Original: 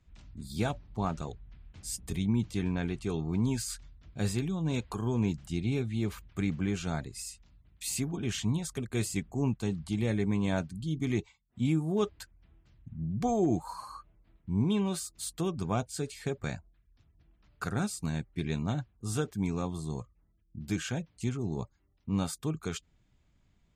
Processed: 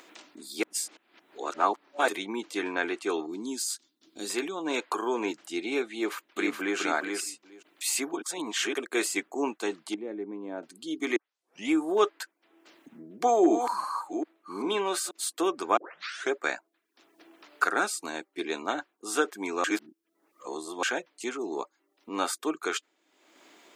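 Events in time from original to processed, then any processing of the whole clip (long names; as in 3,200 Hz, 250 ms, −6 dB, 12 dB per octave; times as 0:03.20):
0:00.63–0:02.08: reverse
0:03.26–0:04.30: flat-topped bell 1,100 Hz −14 dB 2.9 octaves
0:05.94–0:06.78: delay throw 420 ms, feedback 10%, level −4 dB
0:08.22–0:08.74: reverse
0:09.94–0:10.63: resonant band-pass 120 Hz, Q 0.71
0:11.16: tape start 0.54 s
0:13.06–0:15.11: delay that plays each chunk backwards 391 ms, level −7 dB
0:15.77: tape start 0.54 s
0:17.89–0:18.59: dynamic equaliser 1,800 Hz, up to −5 dB, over −56 dBFS, Q 1.5
0:19.64–0:20.83: reverse
whole clip: elliptic high-pass filter 310 Hz, stop band 80 dB; dynamic equaliser 1,500 Hz, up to +8 dB, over −54 dBFS, Q 0.99; upward compression, threshold −47 dBFS; level +6.5 dB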